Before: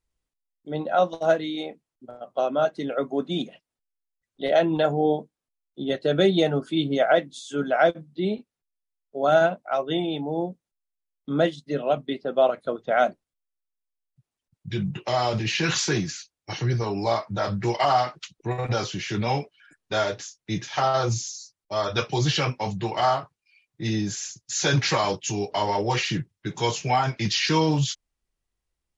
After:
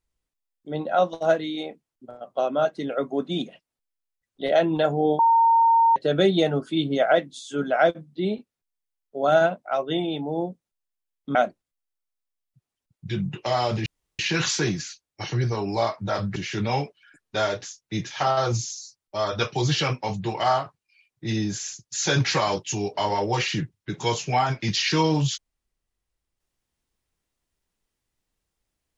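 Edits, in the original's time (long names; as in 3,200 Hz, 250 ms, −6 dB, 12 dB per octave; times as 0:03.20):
0:05.19–0:05.96: beep over 917 Hz −14 dBFS
0:11.35–0:12.97: remove
0:15.48: splice in room tone 0.33 s
0:17.65–0:18.93: remove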